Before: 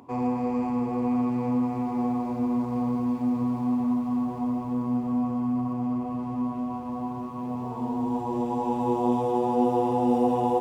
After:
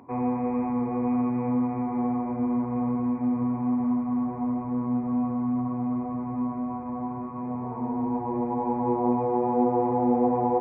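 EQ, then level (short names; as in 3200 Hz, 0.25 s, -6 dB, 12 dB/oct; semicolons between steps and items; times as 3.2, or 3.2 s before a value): brick-wall FIR low-pass 2500 Hz; 0.0 dB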